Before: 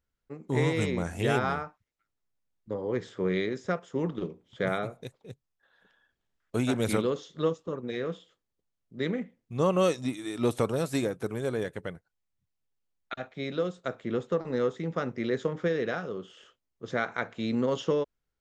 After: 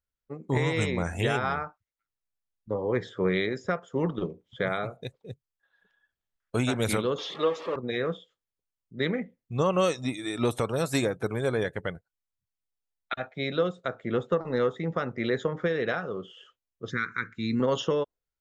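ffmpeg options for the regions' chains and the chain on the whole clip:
-filter_complex "[0:a]asettb=1/sr,asplit=3[s0][s1][s2];[s0]atrim=end=7.184[s3];[s1]atrim=start=7.18:end=7.76,asetpts=PTS-STARTPTS,afade=t=in:d=0.004:c=qsin,afade=t=out:st=0.576:d=0.004:c=qsin,aeval=exprs='val(0)+0.5*0.0168*sgn(val(0))':c=same,highpass=350,lowpass=4300,bandreject=f=1500:w=12[s4];[s2]atrim=start=7.756[s5];[s3][s4]acrossfade=d=0.004:c1=hsin:c2=qsin[s6];[s6][s5]acrossfade=d=0.004:c1=qsin:c2=hsin,asettb=1/sr,asplit=3[s7][s8][s9];[s7]atrim=end=16.904[s10];[s8]atrim=start=16.9:end=17.6,asetpts=PTS-STARTPTS,afade=t=in:d=0.004:c=qsin,afade=t=out:st=0.696:d=0.004:c=qsin,asuperstop=centerf=670:order=4:qfactor=0.7,equalizer=f=3100:w=3:g=-9[s11];[s9]atrim=start=17.596[s12];[s10][s11]acrossfade=d=0.004:c1=hsin:c2=qsin[s13];[s13][s12]acrossfade=d=0.004:c1=qsin:c2=hsin,afftdn=nr=14:nf=-51,equalizer=f=270:t=o:w=2.1:g=-5.5,alimiter=limit=0.0794:level=0:latency=1:release=334,volume=2.24"

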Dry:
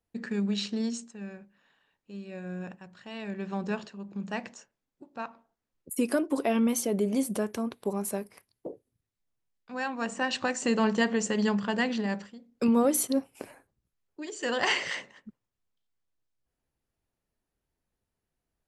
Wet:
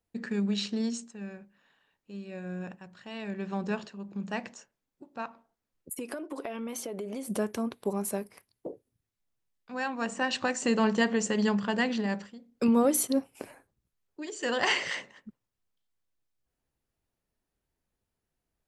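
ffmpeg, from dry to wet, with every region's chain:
-filter_complex "[0:a]asettb=1/sr,asplit=3[s0][s1][s2];[s0]atrim=end=5.944[s3];[s1]atrim=start=5.94:end=7.28,asetpts=PTS-STARTPTS,afade=t=in:d=0.004:c=qsin,afade=t=out:st=1.336:d=0.004:c=qsin,bass=f=250:g=-12,treble=f=4000:g=-6,acompressor=threshold=0.0251:ratio=12:attack=3.2:release=140:knee=1:detection=peak[s4];[s2]atrim=start=7.276[s5];[s3][s4]acrossfade=d=0.004:c1=hsin:c2=qsin[s6];[s6][s5]acrossfade=d=0.004:c1=qsin:c2=hsin"

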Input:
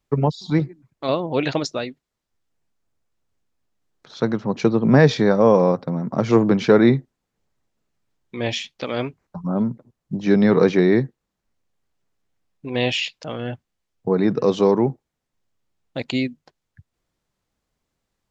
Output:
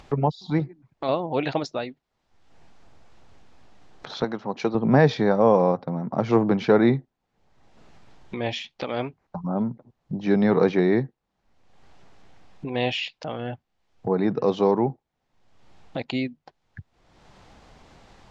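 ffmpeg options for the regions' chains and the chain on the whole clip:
-filter_complex "[0:a]asettb=1/sr,asplit=3[s0][s1][s2];[s0]atrim=end=4.244[s3];[s1]atrim=start=4.24:end=4.75,asetpts=PTS-STARTPTS,afade=t=in:d=0.004:c=qsin,afade=t=out:st=0.506:d=0.004:c=qsin,highpass=f=340:p=1,highshelf=f=4400:g=5[s4];[s2]atrim=start=4.746[s5];[s3][s4]acrossfade=d=0.004:c1=hsin:c2=qsin[s6];[s6][s5]acrossfade=d=0.004:c1=qsin:c2=hsin,lowpass=4700,equalizer=f=790:t=o:w=0.56:g=6.5,acompressor=mode=upward:threshold=0.0794:ratio=2.5,volume=0.596"

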